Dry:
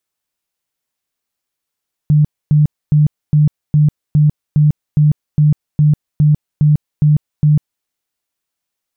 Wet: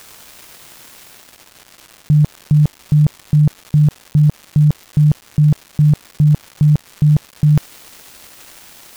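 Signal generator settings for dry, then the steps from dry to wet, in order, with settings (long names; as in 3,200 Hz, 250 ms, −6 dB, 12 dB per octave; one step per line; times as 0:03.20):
tone bursts 150 Hz, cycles 22, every 0.41 s, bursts 14, −6.5 dBFS
reversed playback
upward compression, threshold −14 dBFS
reversed playback
surface crackle 440 per second −28 dBFS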